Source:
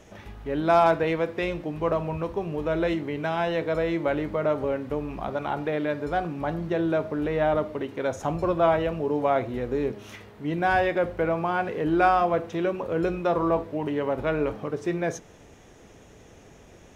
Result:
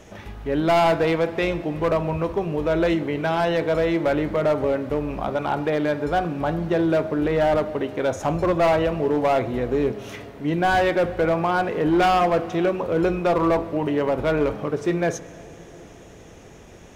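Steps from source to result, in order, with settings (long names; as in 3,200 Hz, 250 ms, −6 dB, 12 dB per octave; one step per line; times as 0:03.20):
hard clipping −19.5 dBFS, distortion −13 dB
on a send: convolution reverb RT60 4.0 s, pre-delay 100 ms, DRR 18 dB
on the sum: level +5 dB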